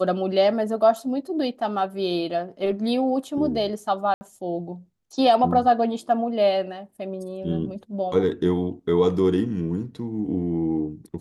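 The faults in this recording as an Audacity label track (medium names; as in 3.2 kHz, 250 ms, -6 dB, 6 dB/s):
4.140000	4.210000	dropout 70 ms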